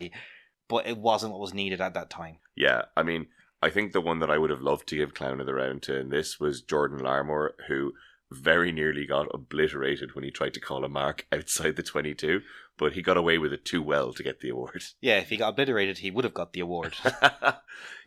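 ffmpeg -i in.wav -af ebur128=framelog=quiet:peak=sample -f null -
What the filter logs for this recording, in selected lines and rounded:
Integrated loudness:
  I:         -27.9 LUFS
  Threshold: -38.2 LUFS
Loudness range:
  LRA:         2.9 LU
  Threshold: -48.2 LUFS
  LRA low:   -29.6 LUFS
  LRA high:  -26.8 LUFS
Sample peak:
  Peak:       -3.3 dBFS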